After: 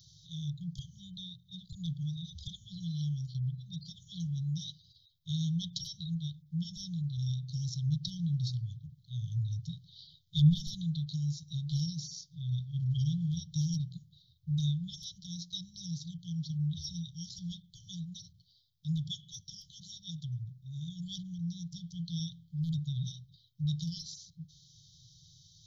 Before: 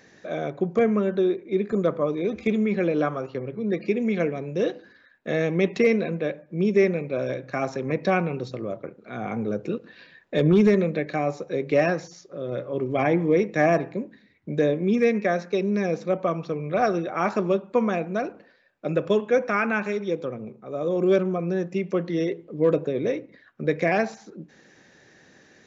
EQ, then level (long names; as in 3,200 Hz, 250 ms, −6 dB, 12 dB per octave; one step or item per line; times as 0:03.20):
linear-phase brick-wall band-stop 160–3,000 Hz
bass and treble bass +7 dB, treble +8 dB
phaser with its sweep stopped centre 2,500 Hz, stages 6
0.0 dB